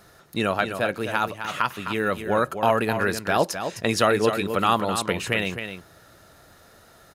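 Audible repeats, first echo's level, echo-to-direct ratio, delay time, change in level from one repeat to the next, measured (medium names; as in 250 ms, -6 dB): 1, -8.5 dB, -8.5 dB, 259 ms, no regular repeats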